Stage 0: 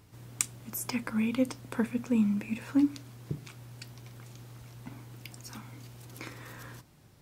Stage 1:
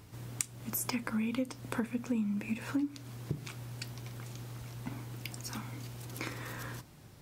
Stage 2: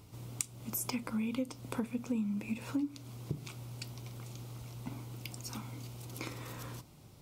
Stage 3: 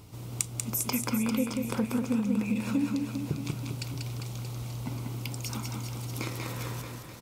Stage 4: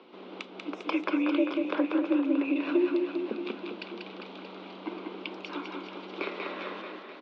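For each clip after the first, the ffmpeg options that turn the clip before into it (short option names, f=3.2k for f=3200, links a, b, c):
-af "acompressor=threshold=-35dB:ratio=5,volume=4dB"
-af "equalizer=f=1.7k:t=o:w=0.38:g=-11.5,volume=-1.5dB"
-af "aecho=1:1:190|399|628.9|881.8|1160:0.631|0.398|0.251|0.158|0.1,volume=5.5dB"
-af "highpass=f=210:t=q:w=0.5412,highpass=f=210:t=q:w=1.307,lowpass=f=3.6k:t=q:w=0.5176,lowpass=f=3.6k:t=q:w=0.7071,lowpass=f=3.6k:t=q:w=1.932,afreqshift=70,volume=3.5dB"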